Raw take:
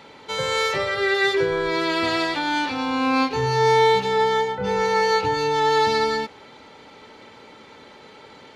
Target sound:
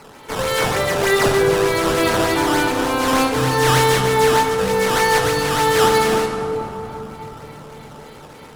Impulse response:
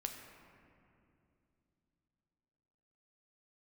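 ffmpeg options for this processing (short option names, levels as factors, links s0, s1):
-filter_complex "[0:a]acrusher=samples=12:mix=1:aa=0.000001:lfo=1:lforange=19.2:lforate=3.3[s0];[1:a]atrim=start_sample=2205,asetrate=24255,aresample=44100[s1];[s0][s1]afir=irnorm=-1:irlink=0,volume=1.33"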